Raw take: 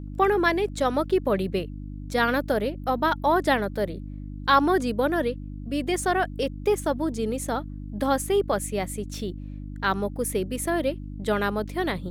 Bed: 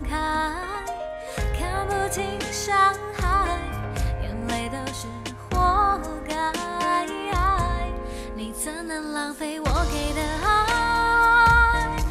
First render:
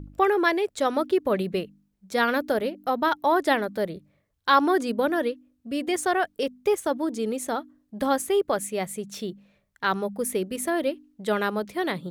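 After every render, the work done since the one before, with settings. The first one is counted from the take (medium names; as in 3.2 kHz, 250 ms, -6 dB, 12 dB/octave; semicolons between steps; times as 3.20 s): de-hum 50 Hz, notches 6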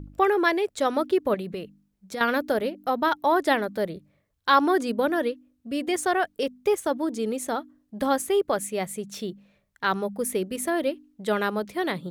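1.34–2.21 s: compression 5:1, threshold -29 dBFS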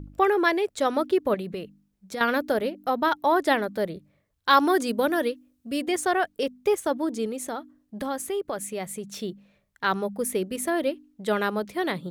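4.50–5.82 s: treble shelf 4.2 kHz +7.5 dB; 7.26–9.20 s: compression 2:1, threshold -30 dBFS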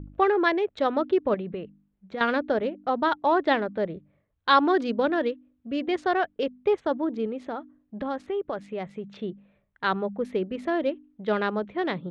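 local Wiener filter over 9 samples; Chebyshev low-pass 4.1 kHz, order 3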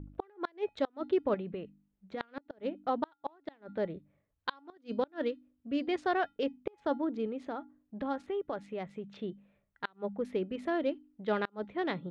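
feedback comb 280 Hz, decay 0.21 s, harmonics odd, mix 50%; inverted gate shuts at -19 dBFS, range -34 dB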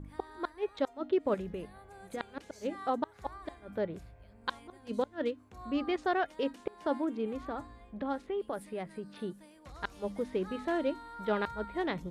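add bed -27.5 dB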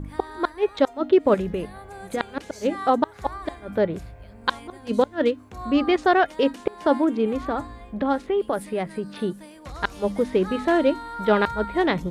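trim +12 dB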